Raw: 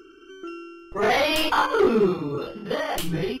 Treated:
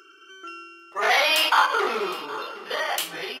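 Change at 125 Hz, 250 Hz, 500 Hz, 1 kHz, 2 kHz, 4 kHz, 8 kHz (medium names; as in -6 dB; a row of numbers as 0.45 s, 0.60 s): under -20 dB, -14.0 dB, -6.5 dB, +2.0 dB, +4.5 dB, +4.5 dB, +4.5 dB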